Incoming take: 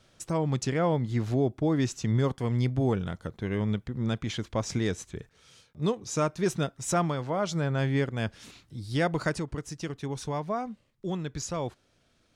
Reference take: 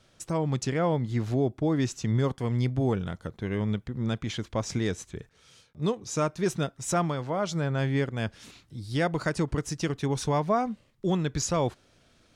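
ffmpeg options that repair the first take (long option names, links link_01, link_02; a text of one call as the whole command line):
ffmpeg -i in.wav -af "asetnsamples=nb_out_samples=441:pad=0,asendcmd='9.39 volume volume 6dB',volume=0dB" out.wav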